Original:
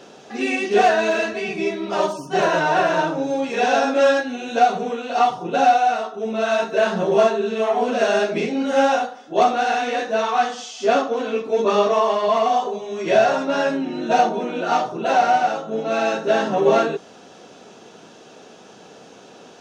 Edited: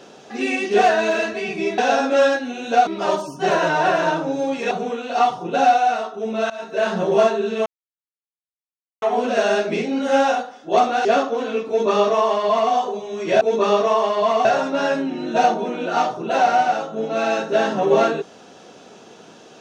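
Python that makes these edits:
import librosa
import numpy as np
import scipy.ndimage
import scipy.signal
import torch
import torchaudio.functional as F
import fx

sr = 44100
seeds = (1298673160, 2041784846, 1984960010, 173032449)

y = fx.edit(x, sr, fx.move(start_s=3.62, length_s=1.09, to_s=1.78),
    fx.fade_in_from(start_s=6.5, length_s=0.42, floor_db=-21.0),
    fx.insert_silence(at_s=7.66, length_s=1.36),
    fx.cut(start_s=9.69, length_s=1.15),
    fx.duplicate(start_s=11.47, length_s=1.04, to_s=13.2), tone=tone)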